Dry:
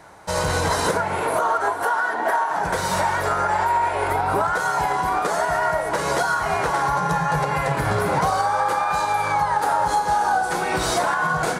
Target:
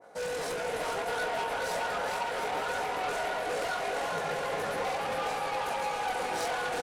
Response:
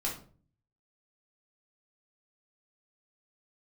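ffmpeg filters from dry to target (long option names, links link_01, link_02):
-af "highpass=140,equalizer=frequency=510:width_type=o:width=1.2:gain=10,bandreject=frequency=980:width=12,aecho=1:1:4.1:0.44,atempo=1.7,flanger=delay=18:depth=2.6:speed=1.7,asoftclip=type=tanh:threshold=-23dB,aecho=1:1:420|714|919.8|1064|1165:0.631|0.398|0.251|0.158|0.1,adynamicequalizer=threshold=0.00794:dfrequency=1700:dqfactor=0.7:tfrequency=1700:tqfactor=0.7:attack=5:release=100:ratio=0.375:range=2.5:mode=boostabove:tftype=highshelf,volume=-9dB"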